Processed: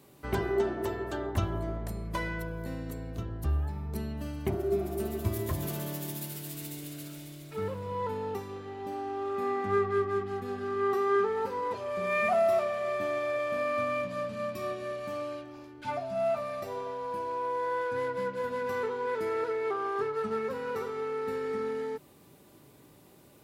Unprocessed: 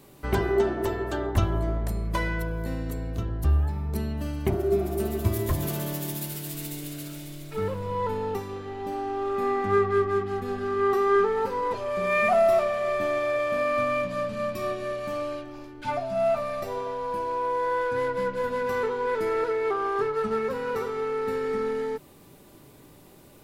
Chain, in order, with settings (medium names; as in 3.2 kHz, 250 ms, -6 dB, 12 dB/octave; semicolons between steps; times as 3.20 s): high-pass 65 Hz; trim -5 dB